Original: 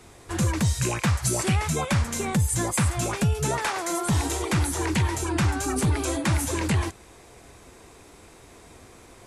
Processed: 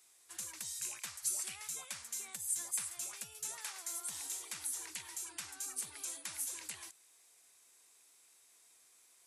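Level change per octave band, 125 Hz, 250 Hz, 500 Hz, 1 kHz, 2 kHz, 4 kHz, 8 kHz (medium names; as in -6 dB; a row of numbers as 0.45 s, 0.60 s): under -40 dB, -37.5 dB, -32.0 dB, -25.5 dB, -19.5 dB, -13.5 dB, -8.0 dB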